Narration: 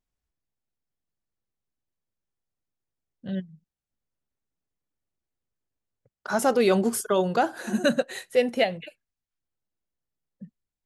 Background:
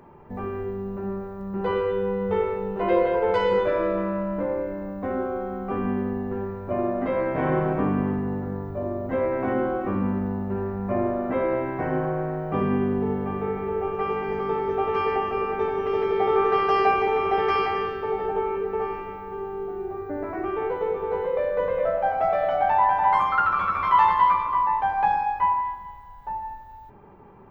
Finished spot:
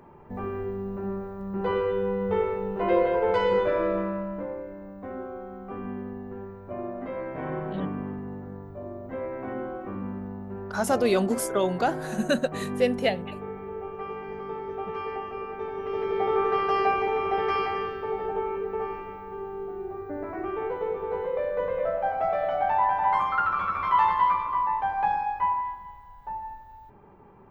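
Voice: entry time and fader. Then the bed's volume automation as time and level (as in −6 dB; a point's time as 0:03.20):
4.45 s, −2.0 dB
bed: 0:03.96 −1.5 dB
0:04.61 −9 dB
0:15.60 −9 dB
0:16.17 −3.5 dB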